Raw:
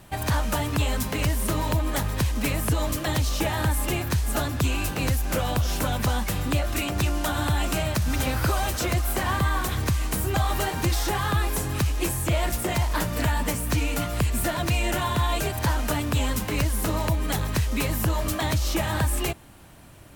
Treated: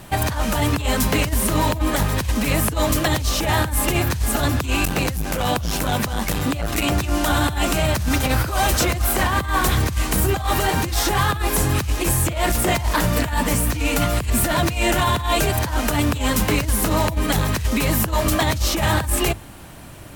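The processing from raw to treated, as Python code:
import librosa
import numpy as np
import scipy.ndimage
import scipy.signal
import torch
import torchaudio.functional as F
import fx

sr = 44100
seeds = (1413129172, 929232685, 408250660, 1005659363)

y = fx.hum_notches(x, sr, base_hz=50, count=2)
y = fx.over_compress(y, sr, threshold_db=-26.0, ratio=-0.5)
y = np.clip(y, -10.0 ** (-18.5 / 20.0), 10.0 ** (-18.5 / 20.0))
y = fx.transformer_sat(y, sr, knee_hz=180.0, at=(4.85, 6.91))
y = F.gain(torch.from_numpy(y), 7.5).numpy()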